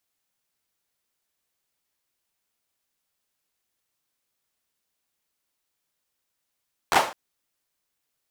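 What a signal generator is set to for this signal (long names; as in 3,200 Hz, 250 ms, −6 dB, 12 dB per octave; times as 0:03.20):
synth clap length 0.21 s, apart 12 ms, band 770 Hz, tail 0.38 s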